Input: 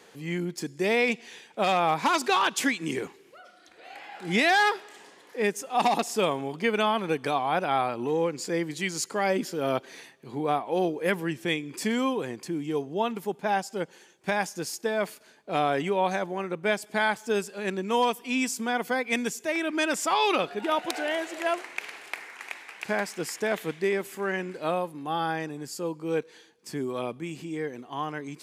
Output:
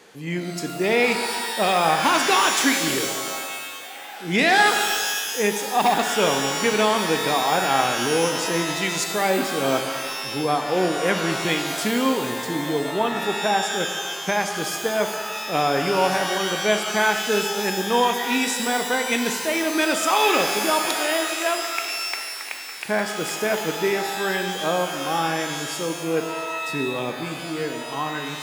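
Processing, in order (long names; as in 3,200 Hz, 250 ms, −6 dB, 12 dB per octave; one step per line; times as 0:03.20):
reverb with rising layers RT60 1.8 s, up +12 semitones, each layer −2 dB, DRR 5.5 dB
level +3.5 dB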